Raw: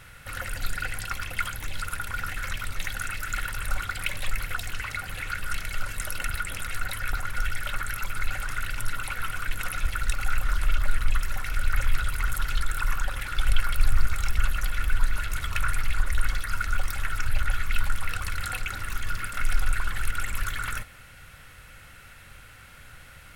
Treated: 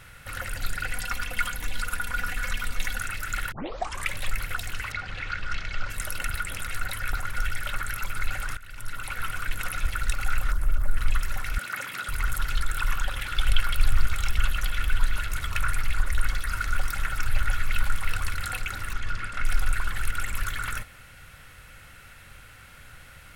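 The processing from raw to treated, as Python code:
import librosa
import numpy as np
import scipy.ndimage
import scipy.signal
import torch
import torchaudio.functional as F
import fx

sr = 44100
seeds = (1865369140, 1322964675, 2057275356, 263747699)

y = fx.comb(x, sr, ms=4.1, depth=0.65, at=(0.9, 2.99))
y = fx.lowpass(y, sr, hz=5700.0, slope=24, at=(4.92, 5.9))
y = fx.peak_eq(y, sr, hz=3300.0, db=-14.5, octaves=2.3, at=(10.52, 10.97))
y = fx.highpass(y, sr, hz=180.0, slope=24, at=(11.58, 12.09))
y = fx.peak_eq(y, sr, hz=3200.0, db=5.5, octaves=0.62, at=(12.75, 15.22))
y = fx.echo_single(y, sr, ms=327, db=-8.5, at=(16.12, 18.34))
y = fx.air_absorb(y, sr, metres=69.0, at=(18.92, 19.44), fade=0.02)
y = fx.edit(y, sr, fx.tape_start(start_s=3.52, length_s=0.6),
    fx.fade_in_from(start_s=8.57, length_s=0.64, floor_db=-21.0), tone=tone)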